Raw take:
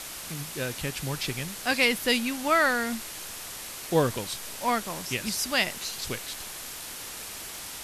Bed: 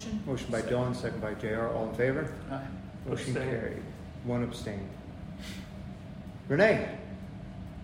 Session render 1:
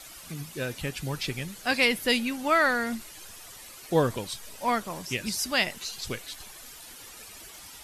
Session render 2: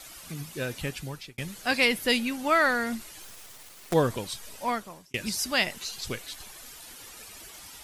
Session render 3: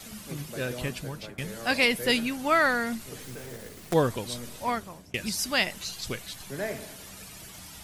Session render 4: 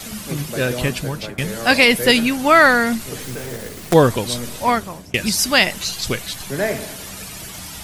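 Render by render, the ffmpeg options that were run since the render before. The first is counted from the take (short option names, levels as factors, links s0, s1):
-af "afftdn=nr=11:nf=-40"
-filter_complex "[0:a]asettb=1/sr,asplit=3[s0][s1][s2];[s0]atrim=end=3.224[s3];[s1]atrim=start=3.22:end=3.94,asetpts=PTS-STARTPTS,afade=t=in:d=0.004:c=qsin,afade=t=out:st=0.716:d=0.004:c=qsin,acrusher=bits=5:dc=4:mix=0:aa=0.000001[s4];[s2]atrim=start=3.936[s5];[s3][s4]acrossfade=d=0.004:c1=hsin:c2=qsin[s6];[s6][s5]acrossfade=d=0.004:c1=qsin:c2=hsin,asplit=3[s7][s8][s9];[s7]atrim=end=1.38,asetpts=PTS-STARTPTS,afade=t=out:st=0.88:d=0.5[s10];[s8]atrim=start=1.38:end=5.14,asetpts=PTS-STARTPTS,afade=t=in:d=0.004:c=hsin,afade=t=out:st=3.17:d=0.59[s11];[s9]atrim=start=5.14,asetpts=PTS-STARTPTS,afade=t=in:d=0.004:c=hsin[s12];[s10][s11][s12]concat=n=3:v=0:a=1"
-filter_complex "[1:a]volume=0.316[s0];[0:a][s0]amix=inputs=2:normalize=0"
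-af "volume=3.76,alimiter=limit=0.891:level=0:latency=1"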